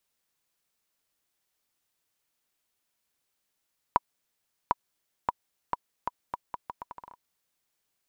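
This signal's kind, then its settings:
bouncing ball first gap 0.75 s, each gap 0.77, 975 Hz, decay 28 ms −7.5 dBFS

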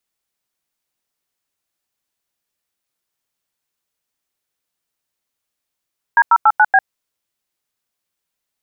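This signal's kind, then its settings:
touch tones "D089B", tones 51 ms, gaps 91 ms, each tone −9.5 dBFS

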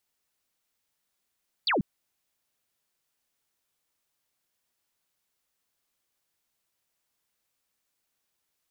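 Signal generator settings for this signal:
single falling chirp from 4,900 Hz, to 150 Hz, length 0.14 s sine, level −22 dB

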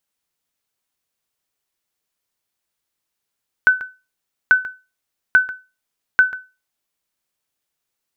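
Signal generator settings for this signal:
ping with an echo 1,510 Hz, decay 0.28 s, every 0.84 s, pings 4, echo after 0.14 s, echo −16 dB −4 dBFS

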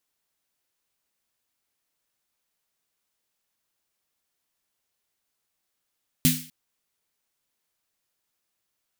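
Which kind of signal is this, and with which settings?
synth snare length 0.25 s, tones 160 Hz, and 250 Hz, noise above 2,000 Hz, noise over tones −1.5 dB, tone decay 0.36 s, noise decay 0.44 s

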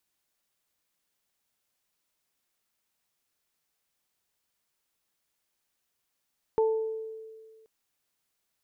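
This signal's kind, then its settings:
harmonic partials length 1.08 s, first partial 442 Hz, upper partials −8.5 dB, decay 1.83 s, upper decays 0.67 s, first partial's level −20 dB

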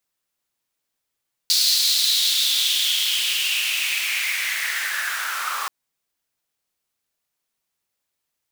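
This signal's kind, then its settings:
filter sweep on noise pink, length 4.18 s highpass, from 4,400 Hz, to 1,100 Hz, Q 5, linear, gain ramp −10 dB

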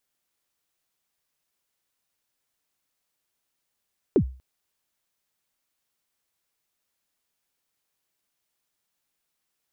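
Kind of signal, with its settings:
synth kick length 0.24 s, from 460 Hz, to 64 Hz, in 80 ms, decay 0.37 s, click off, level −12 dB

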